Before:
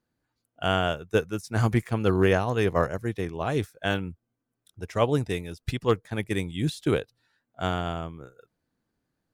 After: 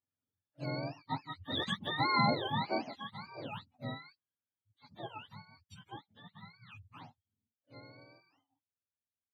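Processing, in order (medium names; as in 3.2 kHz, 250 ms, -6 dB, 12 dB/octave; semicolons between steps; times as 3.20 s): spectrum inverted on a logarithmic axis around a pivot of 630 Hz; Doppler pass-by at 2.10 s, 11 m/s, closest 6.4 m; trim -5.5 dB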